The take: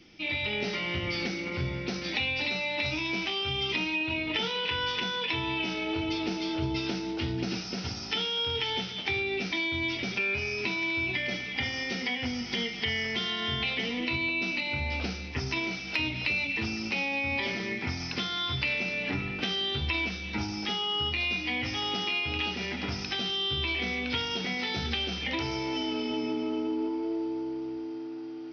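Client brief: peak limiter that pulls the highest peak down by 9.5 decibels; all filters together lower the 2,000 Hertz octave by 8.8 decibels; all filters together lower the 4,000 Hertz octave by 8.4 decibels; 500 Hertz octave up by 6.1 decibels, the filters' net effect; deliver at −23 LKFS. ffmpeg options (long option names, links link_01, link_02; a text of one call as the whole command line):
ffmpeg -i in.wav -af "equalizer=frequency=500:width_type=o:gain=8.5,equalizer=frequency=2000:width_type=o:gain=-8.5,equalizer=frequency=4000:width_type=o:gain=-8,volume=10.5dB,alimiter=limit=-14dB:level=0:latency=1" out.wav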